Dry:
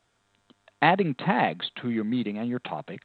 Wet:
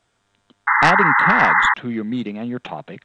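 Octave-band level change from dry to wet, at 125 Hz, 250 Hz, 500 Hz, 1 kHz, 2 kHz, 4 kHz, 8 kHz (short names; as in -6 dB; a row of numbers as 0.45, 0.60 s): +3.5 dB, +3.0 dB, +3.0 dB, +10.5 dB, +15.5 dB, +4.0 dB, n/a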